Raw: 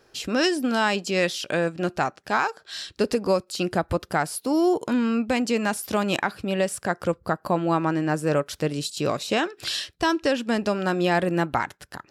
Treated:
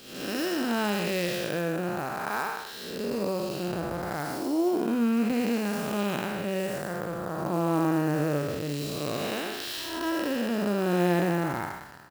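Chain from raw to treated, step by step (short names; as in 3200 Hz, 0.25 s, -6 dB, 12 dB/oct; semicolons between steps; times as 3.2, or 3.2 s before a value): time blur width 0.312 s; doubler 34 ms -14 dB; clock jitter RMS 0.022 ms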